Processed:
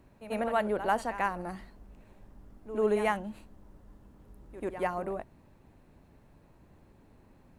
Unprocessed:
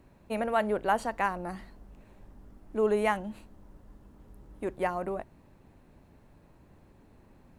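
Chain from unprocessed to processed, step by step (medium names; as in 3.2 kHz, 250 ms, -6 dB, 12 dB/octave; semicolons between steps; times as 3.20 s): reverse echo 91 ms -12.5 dB; trim -1.5 dB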